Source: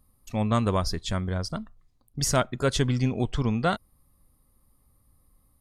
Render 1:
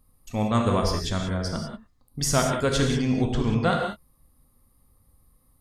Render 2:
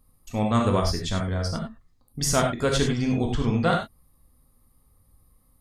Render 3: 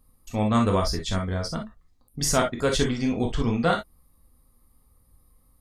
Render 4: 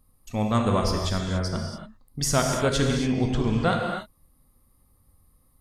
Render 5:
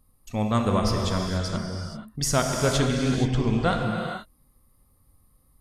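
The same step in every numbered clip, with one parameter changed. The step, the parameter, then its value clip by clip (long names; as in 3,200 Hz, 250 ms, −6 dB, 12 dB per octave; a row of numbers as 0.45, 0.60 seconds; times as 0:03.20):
reverb whose tail is shaped and stops, gate: 210, 120, 80, 310, 500 milliseconds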